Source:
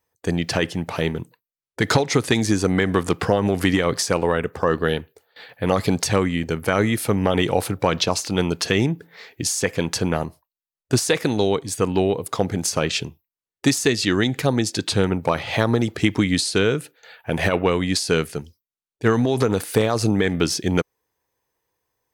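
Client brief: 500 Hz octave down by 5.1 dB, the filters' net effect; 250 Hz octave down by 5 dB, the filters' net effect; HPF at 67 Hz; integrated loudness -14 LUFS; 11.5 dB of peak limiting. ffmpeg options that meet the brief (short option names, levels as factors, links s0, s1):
-af "highpass=67,equalizer=f=250:t=o:g=-5.5,equalizer=f=500:t=o:g=-4.5,volume=5.31,alimiter=limit=0.841:level=0:latency=1"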